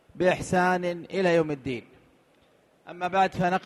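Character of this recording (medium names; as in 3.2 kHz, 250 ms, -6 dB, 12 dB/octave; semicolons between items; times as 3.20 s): noise floor -63 dBFS; spectral tilt -4.5 dB/octave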